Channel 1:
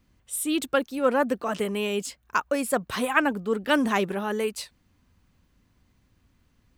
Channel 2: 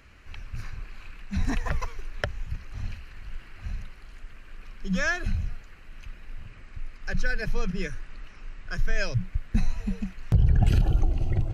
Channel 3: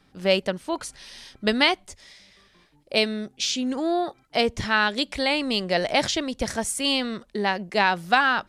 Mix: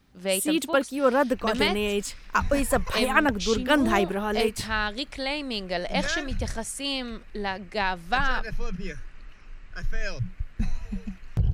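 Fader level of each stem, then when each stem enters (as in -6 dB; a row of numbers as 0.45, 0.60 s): +1.0, -3.5, -6.0 dB; 0.00, 1.05, 0.00 s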